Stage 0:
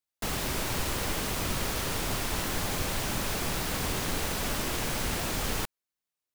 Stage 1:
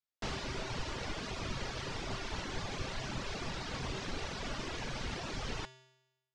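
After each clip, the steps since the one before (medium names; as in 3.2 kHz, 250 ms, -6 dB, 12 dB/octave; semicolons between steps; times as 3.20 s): low-pass 5.9 kHz 24 dB/octave; reverb removal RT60 1.2 s; feedback comb 130 Hz, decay 0.96 s, harmonics odd, mix 70%; trim +5 dB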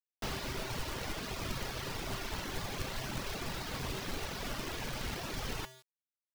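companded quantiser 4-bit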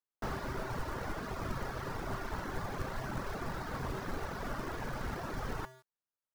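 resonant high shelf 2 kHz -9.5 dB, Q 1.5; trim +1 dB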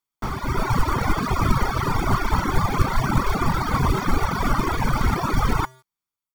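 reverb removal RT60 1 s; comb 0.9 ms, depth 51%; level rider gain up to 10.5 dB; trim +7 dB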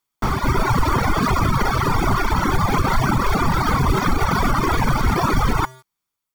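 loudness maximiser +15 dB; trim -8 dB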